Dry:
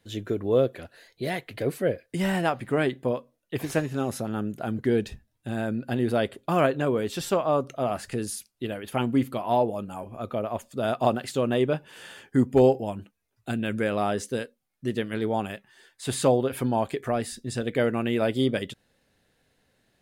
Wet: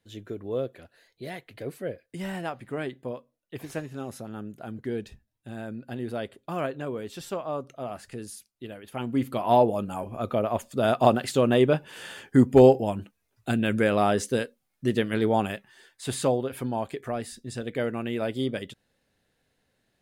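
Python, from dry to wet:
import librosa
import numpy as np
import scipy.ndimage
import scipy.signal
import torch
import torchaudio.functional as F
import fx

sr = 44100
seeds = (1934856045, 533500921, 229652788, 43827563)

y = fx.gain(x, sr, db=fx.line((8.93, -8.0), (9.47, 3.5), (15.46, 3.5), (16.46, -4.5)))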